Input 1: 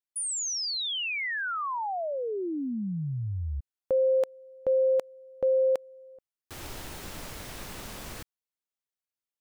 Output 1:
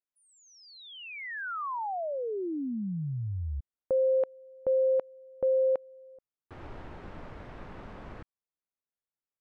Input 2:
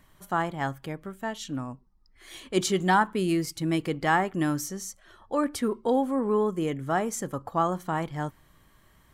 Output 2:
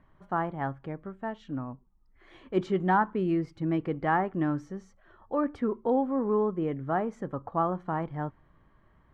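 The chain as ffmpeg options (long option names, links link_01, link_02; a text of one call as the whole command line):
ffmpeg -i in.wav -af "lowpass=1500,volume=-1.5dB" out.wav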